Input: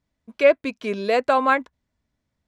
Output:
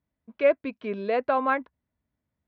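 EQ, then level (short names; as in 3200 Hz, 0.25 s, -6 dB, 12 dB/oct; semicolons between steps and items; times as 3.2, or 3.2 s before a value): HPF 51 Hz; air absorption 340 m; -4.0 dB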